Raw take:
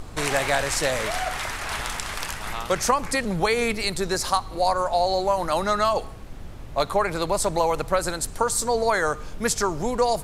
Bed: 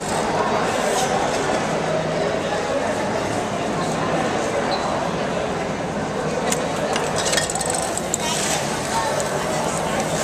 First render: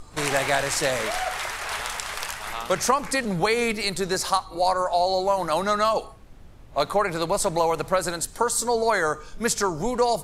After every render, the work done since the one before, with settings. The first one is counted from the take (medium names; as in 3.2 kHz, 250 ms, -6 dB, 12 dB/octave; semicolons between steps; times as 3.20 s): noise print and reduce 9 dB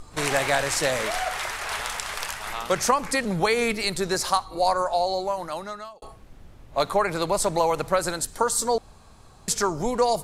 4.77–6.02 s: fade out; 8.78–9.48 s: room tone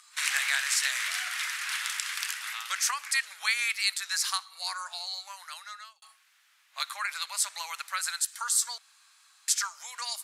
inverse Chebyshev high-pass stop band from 250 Hz, stop band 80 dB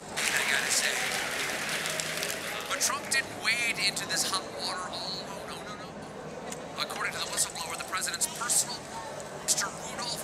add bed -17.5 dB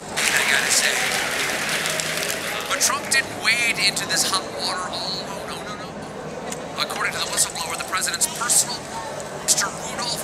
trim +8.5 dB; peak limiter -2 dBFS, peak gain reduction 3 dB